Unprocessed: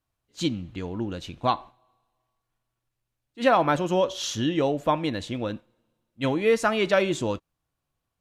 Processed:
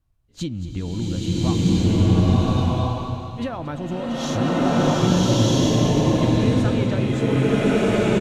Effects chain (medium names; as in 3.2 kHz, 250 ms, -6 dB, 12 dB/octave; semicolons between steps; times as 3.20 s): bass shelf 100 Hz +11.5 dB; compression, threshold -29 dBFS, peak gain reduction 14 dB; bass shelf 290 Hz +9.5 dB; on a send: delay 227 ms -14 dB; on the sum: swelling reverb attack 1350 ms, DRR -11 dB; trim -1 dB